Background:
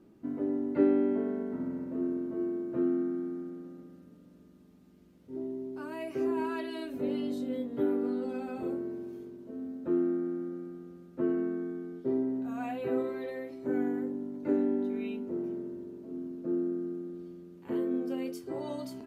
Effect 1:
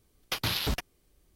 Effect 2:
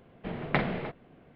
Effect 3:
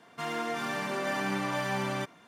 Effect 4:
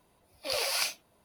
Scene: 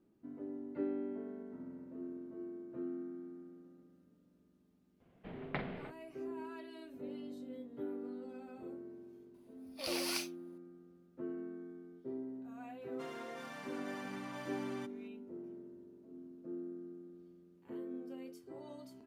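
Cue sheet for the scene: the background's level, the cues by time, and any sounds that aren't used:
background -13 dB
5 add 2 -12.5 dB
9.34 add 4 -8.5 dB
12.81 add 3 -15 dB
not used: 1

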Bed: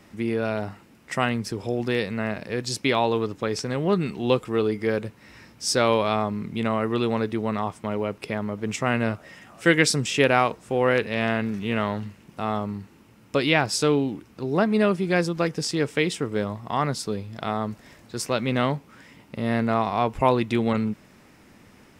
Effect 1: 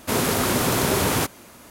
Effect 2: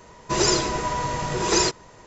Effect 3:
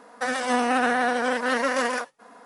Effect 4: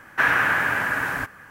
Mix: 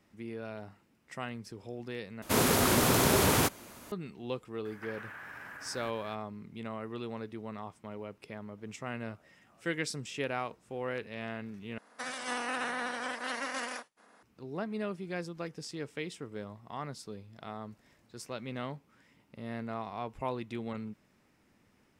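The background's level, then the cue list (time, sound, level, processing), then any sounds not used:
bed -15.5 dB
2.22 replace with 1 -4 dB
4.65 add 4 -8 dB + compressor 10:1, threshold -35 dBFS
11.78 replace with 3 -12.5 dB + spectral limiter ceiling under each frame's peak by 13 dB
not used: 2

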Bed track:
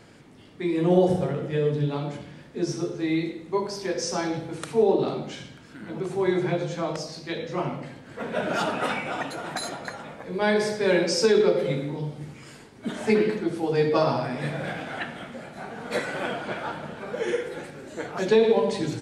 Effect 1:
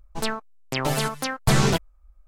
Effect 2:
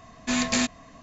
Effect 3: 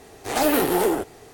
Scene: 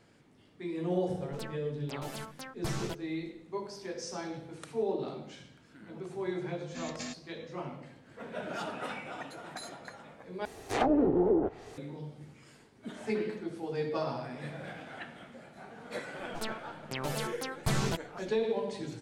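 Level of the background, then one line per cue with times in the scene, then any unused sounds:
bed track -11.5 dB
1.17 add 1 -17 dB
6.47 add 2 -16.5 dB + notch comb 490 Hz
10.45 replace with 3 -2 dB + treble ducked by the level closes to 430 Hz, closed at -17.5 dBFS
16.19 add 1 -11 dB

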